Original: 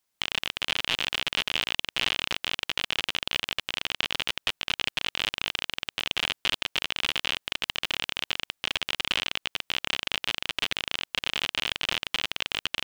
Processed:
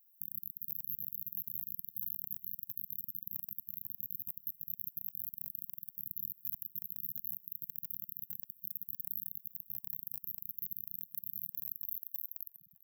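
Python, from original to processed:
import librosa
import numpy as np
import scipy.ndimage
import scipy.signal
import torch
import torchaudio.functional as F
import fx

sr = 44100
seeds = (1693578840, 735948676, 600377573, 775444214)

p1 = fx.tape_stop_end(x, sr, length_s=0.47)
p2 = fx.brickwall_bandstop(p1, sr, low_hz=190.0, high_hz=12000.0)
p3 = p2 + fx.echo_feedback(p2, sr, ms=399, feedback_pct=36, wet_db=-20.5, dry=0)
p4 = fx.filter_sweep_highpass(p3, sr, from_hz=700.0, to_hz=1800.0, start_s=11.52, end_s=12.19, q=2.4)
y = F.gain(torch.from_numpy(p4), 15.5).numpy()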